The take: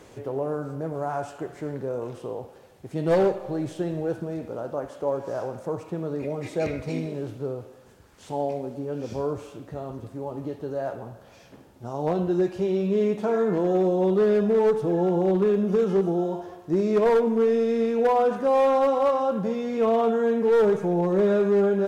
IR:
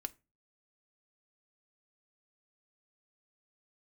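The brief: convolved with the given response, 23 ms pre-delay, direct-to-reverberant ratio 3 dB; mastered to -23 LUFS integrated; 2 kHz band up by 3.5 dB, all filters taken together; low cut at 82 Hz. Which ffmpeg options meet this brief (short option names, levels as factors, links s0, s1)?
-filter_complex "[0:a]highpass=82,equalizer=f=2000:t=o:g=4.5,asplit=2[s0][s1];[1:a]atrim=start_sample=2205,adelay=23[s2];[s1][s2]afir=irnorm=-1:irlink=0,volume=0.891[s3];[s0][s3]amix=inputs=2:normalize=0,volume=1.06"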